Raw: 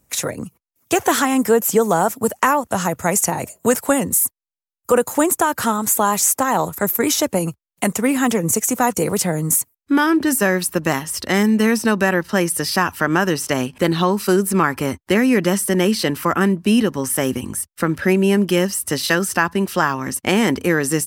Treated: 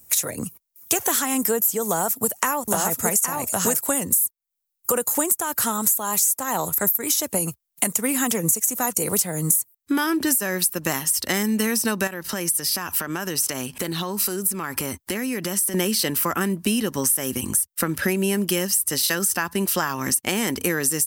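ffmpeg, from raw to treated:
-filter_complex "[0:a]asettb=1/sr,asplit=3[s0][s1][s2];[s0]atrim=end=1.864[s3];[s1]atrim=start=1.86:end=3.81,asetpts=PTS-STARTPTS,afade=t=in:d=0.004:c=qsin,afade=t=out:st=1.946:d=0.004:c=qsin,aecho=1:1:816:0.708,atrim=end_sample=85995[s4];[s2]atrim=start=3.806[s5];[s3][s4]acrossfade=d=0.004:c1=hsin:c2=qsin[s6];[s6][s5]acrossfade=d=0.004:c1=qsin:c2=hsin,asettb=1/sr,asplit=3[s7][s8][s9];[s7]atrim=end=12.074[s10];[s8]atrim=start=12.07:end=15.74,asetpts=PTS-STARTPTS,afade=t=in:d=0.004:c=qsin,afade=t=out:st=3.666:d=0.004:c=qsin,acompressor=threshold=0.0501:ratio=4:attack=3.2:release=140:knee=1:detection=peak[s11];[s9]atrim=start=15.736[s12];[s10][s11]acrossfade=d=0.004:c1=hsin:c2=qsin[s13];[s13][s12]acrossfade=d=0.004:c1=qsin:c2=hsin,aemphasis=mode=production:type=75kf,acompressor=threshold=0.112:ratio=6"

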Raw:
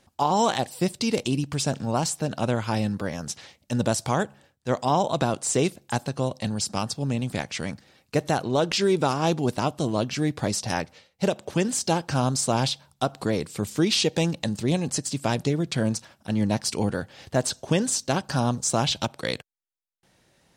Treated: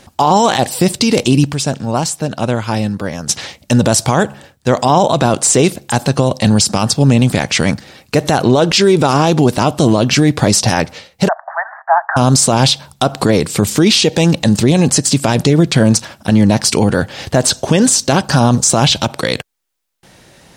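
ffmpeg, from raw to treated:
-filter_complex "[0:a]asplit=3[s0][s1][s2];[s0]afade=t=out:st=11.27:d=0.02[s3];[s1]asuperpass=centerf=1100:order=20:qfactor=0.91,afade=t=in:st=11.27:d=0.02,afade=t=out:st=12.16:d=0.02[s4];[s2]afade=t=in:st=12.16:d=0.02[s5];[s3][s4][s5]amix=inputs=3:normalize=0,asplit=3[s6][s7][s8];[s6]atrim=end=1.522[s9];[s7]atrim=start=1.518:end=3.292,asetpts=PTS-STARTPTS,volume=0.316[s10];[s8]atrim=start=3.288[s11];[s9][s10]acrossfade=d=0.004:c1=hsin:c2=hsin[s12];[s12][s11]acrossfade=d=0.004:c1=hsin:c2=hsin,alimiter=level_in=9.44:limit=0.891:release=50:level=0:latency=1,volume=0.891"

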